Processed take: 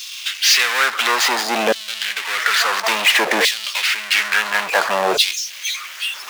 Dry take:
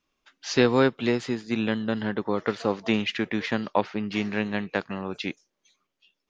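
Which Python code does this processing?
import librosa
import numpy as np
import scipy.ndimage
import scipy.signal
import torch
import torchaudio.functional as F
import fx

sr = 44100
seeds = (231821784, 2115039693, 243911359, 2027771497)

y = fx.power_curve(x, sr, exponent=0.35)
y = fx.filter_lfo_highpass(y, sr, shape='saw_down', hz=0.58, low_hz=540.0, high_hz=4000.0, q=1.7)
y = y * librosa.db_to_amplitude(2.0)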